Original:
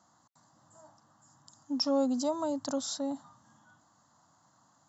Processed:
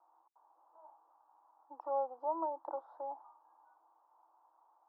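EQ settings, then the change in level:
Chebyshev high-pass with heavy ripple 320 Hz, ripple 6 dB
transistor ladder low-pass 940 Hz, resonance 70%
+6.0 dB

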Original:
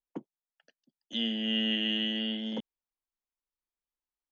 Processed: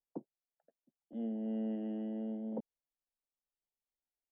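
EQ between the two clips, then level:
transistor ladder low-pass 880 Hz, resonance 35%
+2.5 dB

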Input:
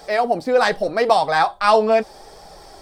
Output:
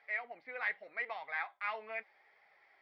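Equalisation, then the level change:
resonant band-pass 2,100 Hz, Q 9.4
high-frequency loss of the air 280 metres
0.0 dB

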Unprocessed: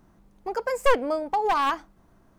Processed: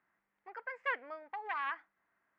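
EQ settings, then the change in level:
resonant band-pass 1,900 Hz, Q 3.3
high-frequency loss of the air 250 metres
−1.0 dB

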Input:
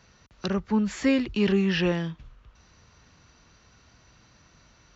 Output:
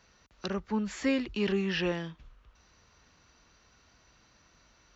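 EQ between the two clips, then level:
parametric band 120 Hz −7 dB 1.6 octaves
−4.0 dB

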